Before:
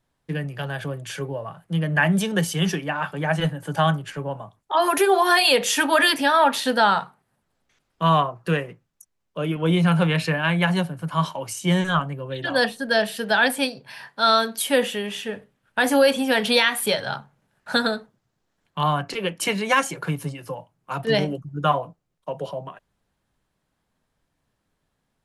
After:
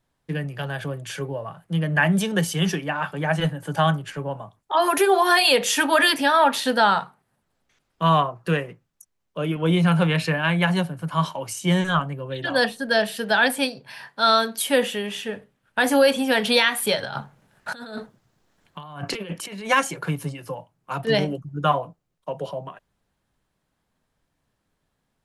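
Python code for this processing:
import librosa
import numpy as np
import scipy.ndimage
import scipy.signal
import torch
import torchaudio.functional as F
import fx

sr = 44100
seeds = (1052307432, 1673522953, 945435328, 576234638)

y = fx.over_compress(x, sr, threshold_db=-34.0, ratio=-1.0, at=(17.03, 19.7))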